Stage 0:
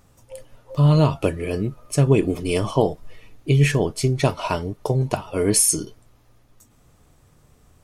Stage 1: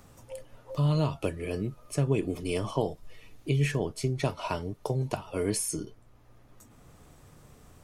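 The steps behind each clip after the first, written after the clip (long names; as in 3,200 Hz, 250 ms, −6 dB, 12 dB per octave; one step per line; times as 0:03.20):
multiband upward and downward compressor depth 40%
level −9 dB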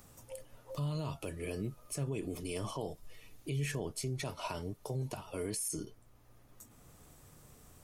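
high-shelf EQ 6,600 Hz +11 dB
brickwall limiter −23 dBFS, peak gain reduction 10.5 dB
level −5 dB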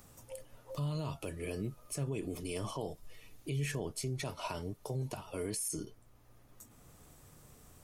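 no processing that can be heard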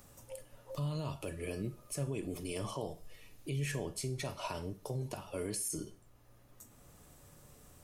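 tuned comb filter 570 Hz, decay 0.25 s, harmonics odd, mix 70%
four-comb reverb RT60 0.41 s, combs from 33 ms, DRR 13 dB
level +9.5 dB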